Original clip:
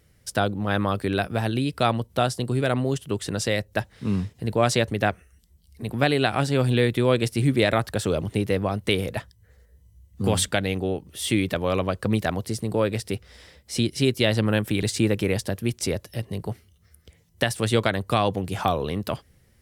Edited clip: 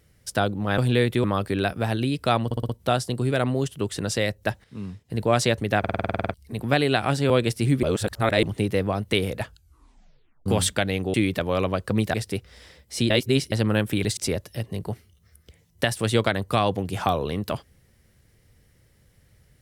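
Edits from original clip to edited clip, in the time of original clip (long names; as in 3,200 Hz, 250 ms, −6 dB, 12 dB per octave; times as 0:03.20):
0:01.99: stutter 0.06 s, 5 plays
0:03.94–0:04.40: clip gain −10 dB
0:05.09: stutter in place 0.05 s, 11 plays
0:06.60–0:07.06: move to 0:00.78
0:07.59–0:08.19: reverse
0:09.16: tape stop 1.06 s
0:10.90–0:11.29: remove
0:12.29–0:12.92: remove
0:13.88–0:14.30: reverse
0:14.95–0:15.76: remove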